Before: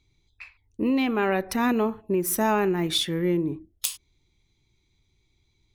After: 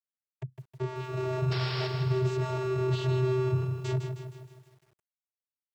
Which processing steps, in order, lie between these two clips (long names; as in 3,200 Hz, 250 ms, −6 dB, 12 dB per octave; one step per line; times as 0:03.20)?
low-shelf EQ 130 Hz −8.5 dB
four-comb reverb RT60 3.4 s, combs from 33 ms, DRR 9.5 dB
comparator with hysteresis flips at −31.5 dBFS
channel vocoder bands 16, square 128 Hz
sound drawn into the spectrogram noise, 0:01.51–0:01.88, 400–5,600 Hz −38 dBFS
feedback echo at a low word length 157 ms, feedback 55%, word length 10 bits, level −7 dB